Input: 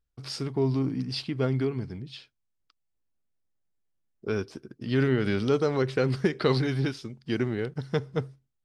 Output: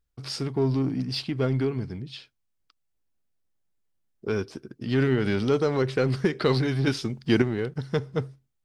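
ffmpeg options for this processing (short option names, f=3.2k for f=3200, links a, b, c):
-filter_complex "[0:a]asettb=1/sr,asplit=3[a][b][c];[a]atrim=end=6.874[d];[b]atrim=start=6.87:end=7.42,asetpts=PTS-STARTPTS,afade=t=in:d=0.004:c=qsin,afade=t=out:st=0.546:d=0.004:c=qsin,acontrast=82[e];[c]atrim=start=7.416[f];[d][e]acrossfade=d=0.004:c1=hsin:c2=qsin[g];[g][f]acrossfade=d=0.004:c1=qsin:c2=hsin,asplit=2[h][i];[i]asoftclip=type=hard:threshold=-28dB,volume=-9dB[j];[h][j]amix=inputs=2:normalize=0"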